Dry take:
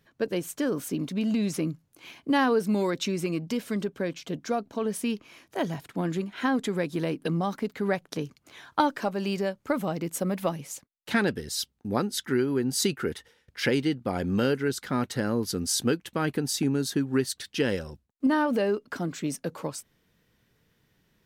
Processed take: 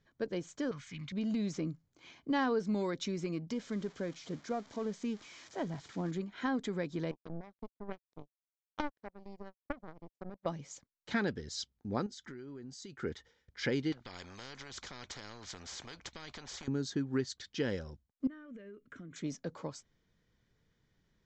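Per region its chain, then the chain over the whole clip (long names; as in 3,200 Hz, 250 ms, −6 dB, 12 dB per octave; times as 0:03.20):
0:00.71–0:01.12: phase distortion by the signal itself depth 0.057 ms + drawn EQ curve 150 Hz 0 dB, 350 Hz −22 dB, 2,200 Hz +12 dB, 5,400 Hz −1 dB
0:03.53–0:06.11: spike at every zero crossing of −24 dBFS + low-pass filter 1,800 Hz 6 dB per octave
0:07.11–0:10.46: tilt shelving filter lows +7.5 dB, about 900 Hz + power curve on the samples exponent 3
0:12.06–0:13.03: high-shelf EQ 7,100 Hz +7 dB + downward compressor 12 to 1, threshold −35 dBFS
0:13.92–0:16.68: low-pass filter 6,300 Hz + downward compressor 4 to 1, threshold −28 dBFS + every bin compressed towards the loudest bin 4 to 1
0:18.27–0:19.16: downward compressor 16 to 1, threshold −35 dBFS + phaser with its sweep stopped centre 2,000 Hz, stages 4
whole clip: Butterworth low-pass 7,500 Hz 96 dB per octave; low-shelf EQ 65 Hz +10.5 dB; notch filter 2,700 Hz, Q 8.2; level −8.5 dB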